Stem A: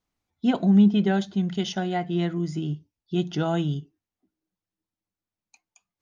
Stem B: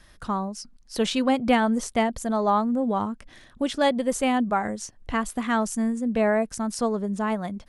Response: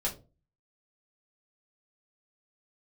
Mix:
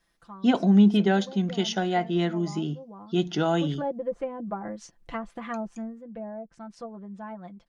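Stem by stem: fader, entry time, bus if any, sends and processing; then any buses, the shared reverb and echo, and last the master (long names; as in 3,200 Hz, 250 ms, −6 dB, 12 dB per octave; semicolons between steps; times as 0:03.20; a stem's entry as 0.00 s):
+2.5 dB, 0.00 s, no send, high-pass filter 170 Hz
0:03.36 −18.5 dB → 0:03.74 −6.5 dB → 0:05.71 −6.5 dB → 0:06.07 −14 dB, 0.00 s, no send, treble cut that deepens with the level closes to 610 Hz, closed at −19 dBFS; comb filter 5.9 ms, depth 74%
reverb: not used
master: low-shelf EQ 89 Hz −8 dB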